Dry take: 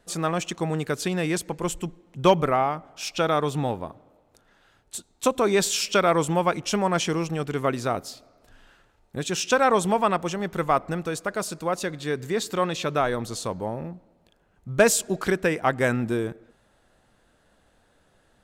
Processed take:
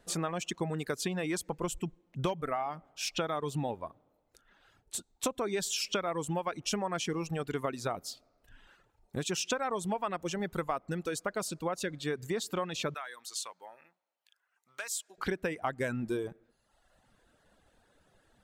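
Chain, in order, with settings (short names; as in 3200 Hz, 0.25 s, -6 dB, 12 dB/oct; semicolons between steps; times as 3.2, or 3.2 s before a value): reverb removal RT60 0.97 s; compressor 8:1, threshold -27 dBFS, peak gain reduction 15 dB; 12.94–15.18 HPF 1400 Hz 12 dB/oct; gain -2 dB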